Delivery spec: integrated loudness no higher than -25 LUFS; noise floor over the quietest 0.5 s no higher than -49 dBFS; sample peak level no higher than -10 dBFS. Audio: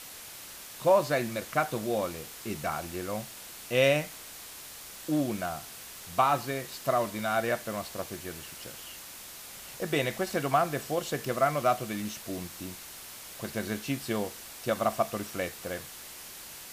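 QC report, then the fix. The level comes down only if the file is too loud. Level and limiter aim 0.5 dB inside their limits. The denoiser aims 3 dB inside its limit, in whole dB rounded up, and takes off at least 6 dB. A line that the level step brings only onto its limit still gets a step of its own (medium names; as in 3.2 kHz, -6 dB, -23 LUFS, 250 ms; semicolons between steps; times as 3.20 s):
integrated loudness -30.5 LUFS: pass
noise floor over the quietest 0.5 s -45 dBFS: fail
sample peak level -11.5 dBFS: pass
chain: noise reduction 7 dB, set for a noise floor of -45 dBFS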